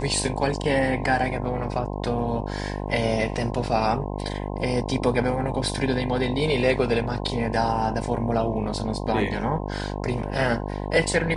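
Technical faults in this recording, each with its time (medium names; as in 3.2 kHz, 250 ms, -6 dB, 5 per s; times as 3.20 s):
buzz 50 Hz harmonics 21 -30 dBFS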